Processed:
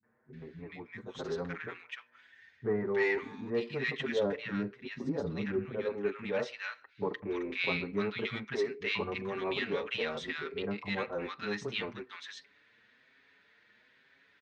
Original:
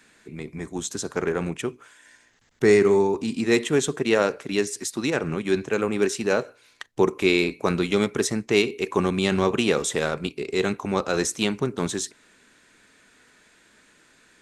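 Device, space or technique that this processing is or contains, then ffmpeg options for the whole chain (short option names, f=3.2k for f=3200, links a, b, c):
barber-pole flanger into a guitar amplifier: -filter_complex "[0:a]asplit=2[a][b];[b]adelay=6.3,afreqshift=1.1[c];[a][c]amix=inputs=2:normalize=1,asoftclip=type=tanh:threshold=-13.5dB,highpass=95,equalizer=f=170:t=q:w=4:g=-4,equalizer=f=330:t=q:w=4:g=-8,equalizer=f=680:t=q:w=4:g=-3,equalizer=f=1.9k:t=q:w=4:g=6,lowpass=f=4.1k:w=0.5412,lowpass=f=4.1k:w=1.3066,bandreject=f=7.2k:w=11,asettb=1/sr,asplit=3[d][e][f];[d]atrim=end=4.054[g];[e]atrim=start=4.05:end=5.86,asetpts=PTS-STARTPTS,afade=t=in:d=0.004:c=qsin,afade=t=out:st=1.806:d=0.004:c=qsin,tiltshelf=f=640:g=8[h];[f]atrim=start=5.856[i];[g][h]acrossfade=d=0.004:c1=hsin:c2=qsin[j];[j][i]acrossfade=d=0.004:c1=qsin:c2=hsin,acrossover=split=210|1200[k][l][m];[l]adelay=30[n];[m]adelay=330[o];[k][n][o]amix=inputs=3:normalize=0,volume=-4.5dB"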